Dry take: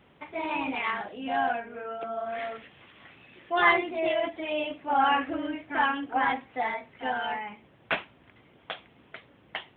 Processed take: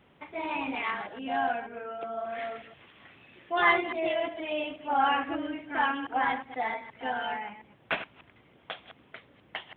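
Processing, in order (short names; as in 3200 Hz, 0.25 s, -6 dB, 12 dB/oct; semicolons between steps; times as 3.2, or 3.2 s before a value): reverse delay 0.119 s, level -12 dB; gain -2 dB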